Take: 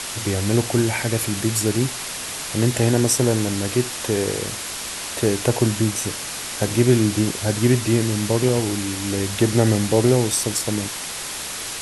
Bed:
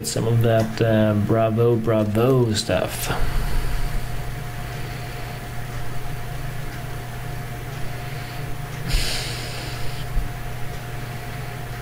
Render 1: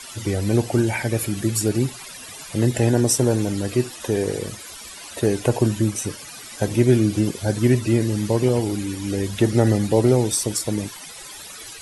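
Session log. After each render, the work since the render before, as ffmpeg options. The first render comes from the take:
-af "afftdn=nr=15:nf=-30"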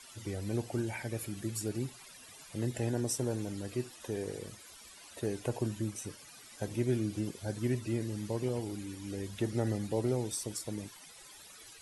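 -af "volume=0.178"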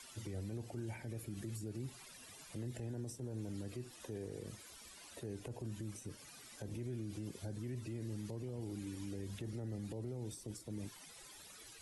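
-filter_complex "[0:a]acrossover=split=120|460[s0][s1][s2];[s0]acompressor=threshold=0.00794:ratio=4[s3];[s1]acompressor=threshold=0.01:ratio=4[s4];[s2]acompressor=threshold=0.00224:ratio=4[s5];[s3][s4][s5]amix=inputs=3:normalize=0,alimiter=level_in=3.76:limit=0.0631:level=0:latency=1:release=34,volume=0.266"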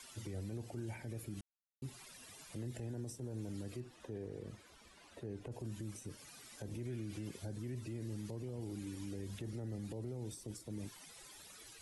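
-filter_complex "[0:a]asettb=1/sr,asplit=3[s0][s1][s2];[s0]atrim=end=3.804[s3];[s1]atrim=start=3.8:end=5.52,asetpts=PTS-STARTPTS,afade=t=in:d=0.004:c=qsin,afade=t=out:st=1.716:d=0.004:c=qsin,lowpass=f=2100:p=1[s4];[s2]atrim=start=5.516[s5];[s3][s4]acrossfade=d=0.004:c1=hsin:c2=qsin[s6];[s6][s5]acrossfade=d=0.004:c1=qsin:c2=hsin,asettb=1/sr,asplit=3[s7][s8][s9];[s7]atrim=end=6.854[s10];[s8]atrim=start=6.85:end=7.37,asetpts=PTS-STARTPTS,afade=t=in:d=0.004:c=qsin,afade=t=out:st=0.516:d=0.004:c=qsin,equalizer=f=2100:w=1:g=6[s11];[s9]atrim=start=7.366[s12];[s10][s11]acrossfade=d=0.004:c1=hsin:c2=qsin[s13];[s13][s12]acrossfade=d=0.004:c1=qsin:c2=hsin,asplit=3[s14][s15][s16];[s14]atrim=end=1.41,asetpts=PTS-STARTPTS,afade=t=out:st=1.406:d=0.004:c=hsin[s17];[s15]atrim=start=1.41:end=1.82,asetpts=PTS-STARTPTS,volume=0[s18];[s16]atrim=start=1.82,asetpts=PTS-STARTPTS,afade=t=in:d=0.004:c=hsin[s19];[s17][s18][s19]concat=n=3:v=0:a=1"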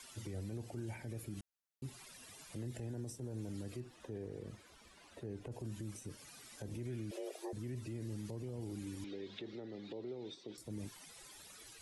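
-filter_complex "[0:a]asettb=1/sr,asplit=3[s0][s1][s2];[s0]atrim=end=7.114[s3];[s1]atrim=start=7.11:end=7.53,asetpts=PTS-STARTPTS,afade=t=in:d=0.004:c=qsin,afade=t=out:st=0.416:d=0.004:c=qsin,afreqshift=250[s4];[s2]atrim=start=7.526[s5];[s3][s4]acrossfade=d=0.004:c1=hsin:c2=qsin[s6];[s6][s5]acrossfade=d=0.004:c1=qsin:c2=hsin,asettb=1/sr,asplit=3[s7][s8][s9];[s7]atrim=end=9.044[s10];[s8]atrim=start=9.04:end=10.58,asetpts=PTS-STARTPTS,afade=t=in:d=0.004:c=qsin,afade=t=out:st=1.536:d=0.004:c=qsin,highpass=260,equalizer=f=390:t=q:w=4:g=5,equalizer=f=2200:t=q:w=4:g=4,equalizer=f=3700:t=q:w=4:g=10,lowpass=f=4700:w=0.5412,lowpass=f=4700:w=1.3066[s11];[s9]atrim=start=10.576[s12];[s10][s11]acrossfade=d=0.004:c1=hsin:c2=qsin[s13];[s13][s12]acrossfade=d=0.004:c1=qsin:c2=hsin"

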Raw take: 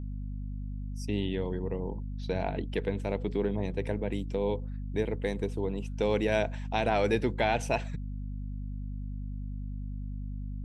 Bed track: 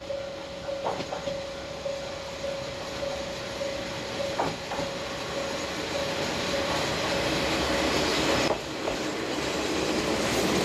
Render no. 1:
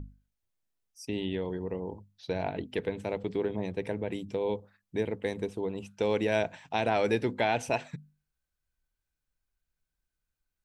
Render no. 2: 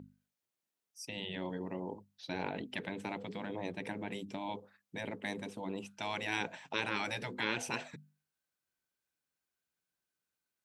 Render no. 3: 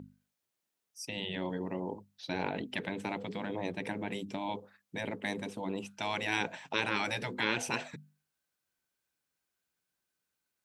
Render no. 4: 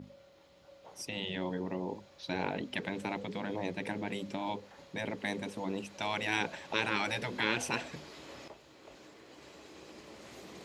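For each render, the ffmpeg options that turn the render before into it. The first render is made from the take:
-af "bandreject=f=50:t=h:w=6,bandreject=f=100:t=h:w=6,bandreject=f=150:t=h:w=6,bandreject=f=200:t=h:w=6,bandreject=f=250:t=h:w=6"
-af "highpass=200,afftfilt=real='re*lt(hypot(re,im),0.1)':imag='im*lt(hypot(re,im),0.1)':win_size=1024:overlap=0.75"
-af "volume=1.5"
-filter_complex "[1:a]volume=0.0596[s0];[0:a][s0]amix=inputs=2:normalize=0"

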